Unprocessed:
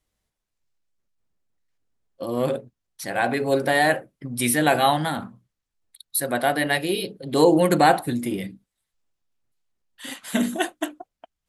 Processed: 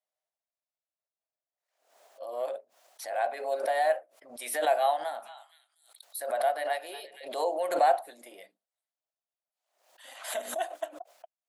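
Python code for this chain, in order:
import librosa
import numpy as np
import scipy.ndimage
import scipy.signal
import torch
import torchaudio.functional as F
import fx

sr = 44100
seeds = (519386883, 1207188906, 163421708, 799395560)

y = fx.ladder_highpass(x, sr, hz=590.0, resonance_pct=70)
y = fx.echo_stepped(y, sr, ms=236, hz=1100.0, octaves=1.4, feedback_pct=70, wet_db=-9.0, at=(5.22, 7.27), fade=0.02)
y = fx.pre_swell(y, sr, db_per_s=89.0)
y = y * 10.0 ** (-3.5 / 20.0)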